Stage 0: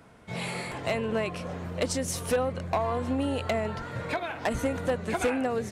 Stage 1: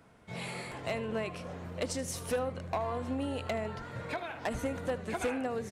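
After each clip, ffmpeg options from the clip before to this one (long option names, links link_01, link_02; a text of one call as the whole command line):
ffmpeg -i in.wav -af "aecho=1:1:77:0.15,volume=-6dB" out.wav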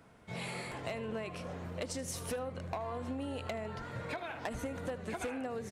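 ffmpeg -i in.wav -af "acompressor=threshold=-35dB:ratio=6" out.wav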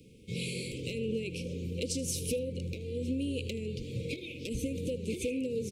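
ffmpeg -i in.wav -af "asuperstop=centerf=1100:order=20:qfactor=0.61,volume=6.5dB" out.wav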